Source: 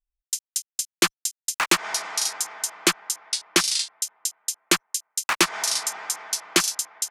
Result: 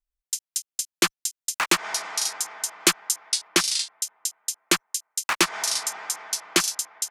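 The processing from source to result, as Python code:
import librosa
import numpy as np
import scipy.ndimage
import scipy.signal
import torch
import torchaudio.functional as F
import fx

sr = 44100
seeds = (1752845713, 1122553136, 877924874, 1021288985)

y = fx.high_shelf(x, sr, hz=4600.0, db=5.0, at=(2.8, 3.48))
y = F.gain(torch.from_numpy(y), -1.0).numpy()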